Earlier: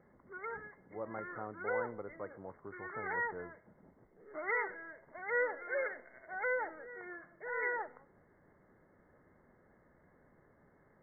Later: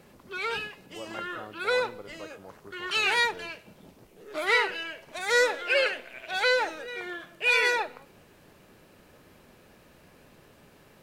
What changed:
background +10.0 dB; master: remove brick-wall FIR low-pass 2.2 kHz

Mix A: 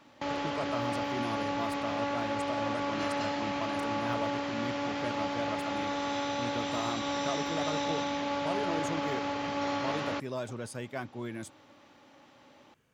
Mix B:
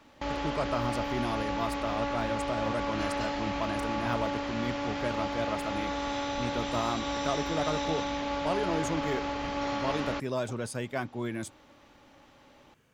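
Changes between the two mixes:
speech +4.5 dB; background: remove high-pass 96 Hz 24 dB/octave

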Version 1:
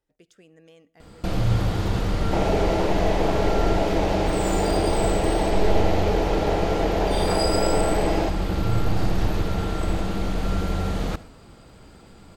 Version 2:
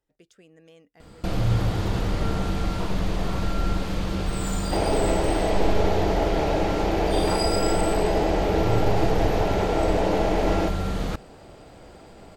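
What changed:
second sound: entry +2.40 s; reverb: off

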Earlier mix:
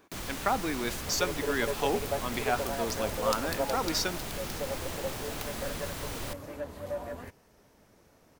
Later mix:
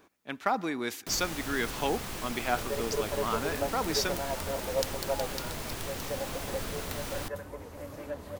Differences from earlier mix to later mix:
first sound: entry +0.95 s; second sound: entry +1.50 s

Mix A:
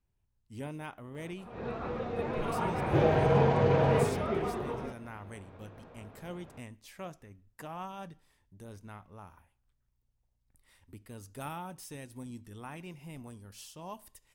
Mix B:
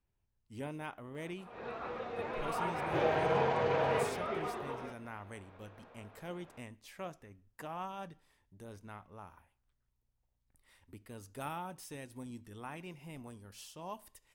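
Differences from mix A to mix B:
background: add bass shelf 440 Hz -11 dB; master: add tone controls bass -4 dB, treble -3 dB

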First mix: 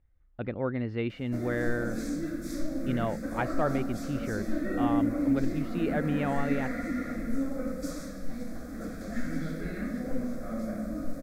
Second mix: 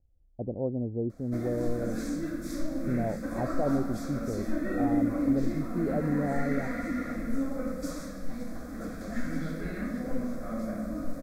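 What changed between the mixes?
speech: add steep low-pass 730 Hz 48 dB/octave; master: add peaking EQ 980 Hz +7 dB 0.43 oct

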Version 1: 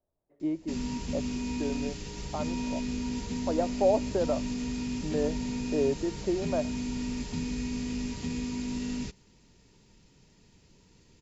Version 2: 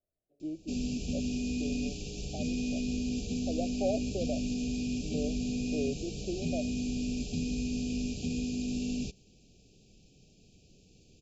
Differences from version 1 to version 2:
speech -7.5 dB; master: add brick-wall FIR band-stop 800–2300 Hz

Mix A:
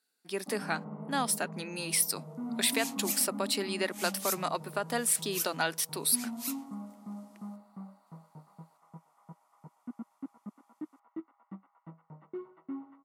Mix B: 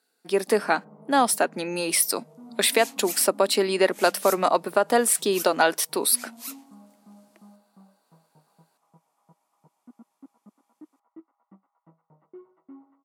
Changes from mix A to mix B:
speech +5.5 dB; first sound -12.0 dB; master: add peaking EQ 540 Hz +8.5 dB 2.3 oct

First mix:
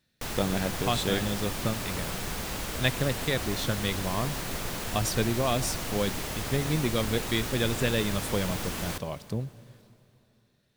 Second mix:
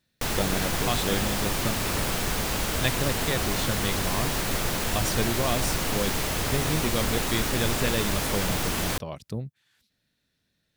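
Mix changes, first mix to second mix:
background +8.0 dB; reverb: off

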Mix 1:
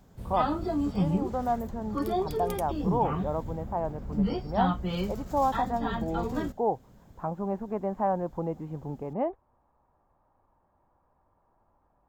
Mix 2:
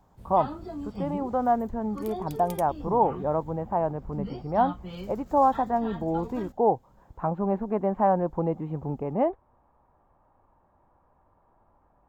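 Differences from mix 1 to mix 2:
speech +5.0 dB; first sound -8.0 dB

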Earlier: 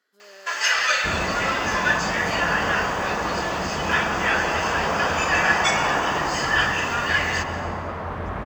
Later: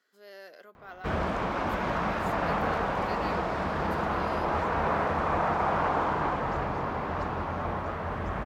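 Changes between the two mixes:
first sound: muted; reverb: off

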